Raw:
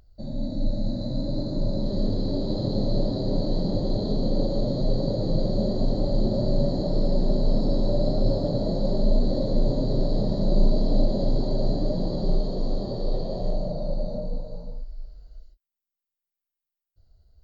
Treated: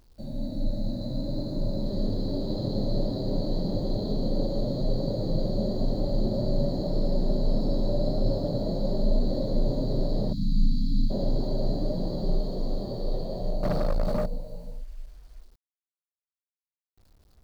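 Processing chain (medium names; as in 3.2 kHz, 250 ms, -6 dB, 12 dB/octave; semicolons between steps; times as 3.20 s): 10.33–11.10 s: spectral selection erased 300–3200 Hz; bit crusher 10-bit; 13.63–14.26 s: waveshaping leveller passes 3; trim -3 dB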